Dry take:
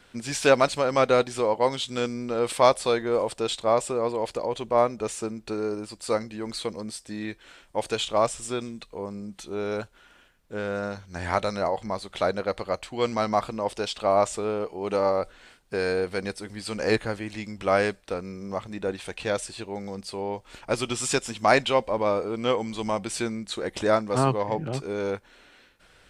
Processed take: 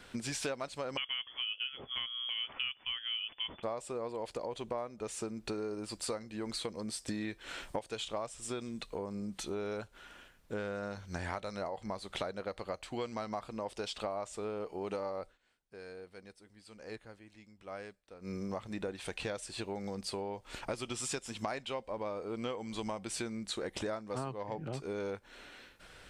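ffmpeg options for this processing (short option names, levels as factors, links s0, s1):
-filter_complex "[0:a]asettb=1/sr,asplit=3[s0][s1][s2];[s0]atrim=end=0.974[s3];[s1]atrim=start=0.97:end=3.63,asetpts=PTS-STARTPTS,afade=t=in:d=0.004:c=qsin,afade=t=out:st=2.656:d=0.004:c=qsin,lowpass=f=3000:t=q:w=0.5098,lowpass=f=3000:t=q:w=0.6013,lowpass=f=3000:t=q:w=0.9,lowpass=f=3000:t=q:w=2.563,afreqshift=-3500[s4];[s2]atrim=start=3.626[s5];[s3][s4]acrossfade=d=0.004:c1=hsin:c2=qsin[s6];[s6][s5]acrossfade=d=0.004:c1=qsin:c2=hsin,asplit=5[s7][s8][s9][s10][s11];[s7]atrim=end=7.082[s12];[s8]atrim=start=7.078:end=7.792,asetpts=PTS-STARTPTS,volume=2.24[s13];[s9]atrim=start=7.788:end=15.38,asetpts=PTS-STARTPTS,afade=t=out:st=7.432:d=0.16:silence=0.0630957[s14];[s10]atrim=start=15.38:end=18.2,asetpts=PTS-STARTPTS,volume=0.0631[s15];[s11]atrim=start=18.2,asetpts=PTS-STARTPTS,afade=t=in:d=0.16:silence=0.0630957[s16];[s12][s13]acrossfade=d=0.004:c1=hsin:c2=hsin[s17];[s14][s15][s16]concat=n=3:v=0:a=1[s18];[s17][s18]acrossfade=d=0.004:c1=hsin:c2=hsin,acompressor=threshold=0.0141:ratio=8,volume=1.19"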